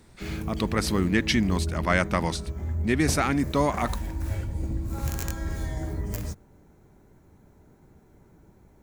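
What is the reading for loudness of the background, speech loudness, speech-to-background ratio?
-32.5 LUFS, -26.0 LUFS, 6.5 dB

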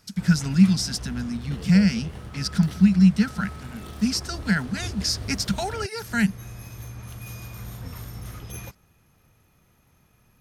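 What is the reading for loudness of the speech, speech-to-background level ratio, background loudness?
-23.0 LUFS, 15.0 dB, -38.0 LUFS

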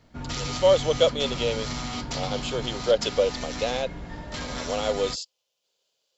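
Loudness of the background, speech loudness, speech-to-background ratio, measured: -33.0 LUFS, -26.0 LUFS, 7.0 dB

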